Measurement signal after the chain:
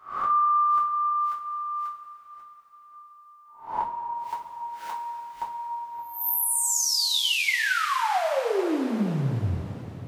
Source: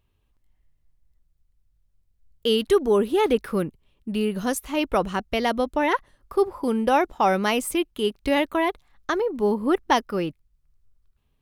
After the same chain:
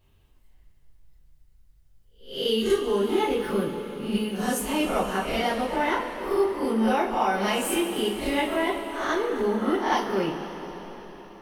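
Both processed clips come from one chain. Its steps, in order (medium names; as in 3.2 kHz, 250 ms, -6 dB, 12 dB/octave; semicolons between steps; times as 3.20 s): reverse spectral sustain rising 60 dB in 0.37 s; compression 2.5:1, threshold -35 dBFS; two-slope reverb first 0.3 s, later 4.7 s, from -18 dB, DRR -7 dB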